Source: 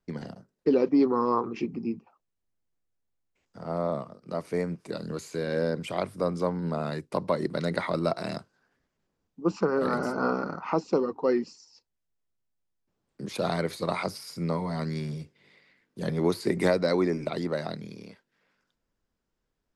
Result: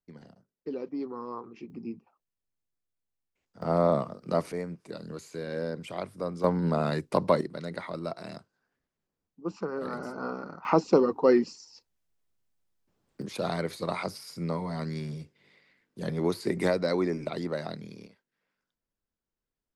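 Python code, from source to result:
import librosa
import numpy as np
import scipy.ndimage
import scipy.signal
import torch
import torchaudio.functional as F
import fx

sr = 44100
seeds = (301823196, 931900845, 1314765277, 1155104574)

y = fx.gain(x, sr, db=fx.steps((0.0, -13.0), (1.7, -6.5), (3.62, 5.5), (4.52, -5.5), (6.44, 3.5), (7.41, -8.0), (10.65, 4.0), (13.22, -2.5), (18.07, -10.0)))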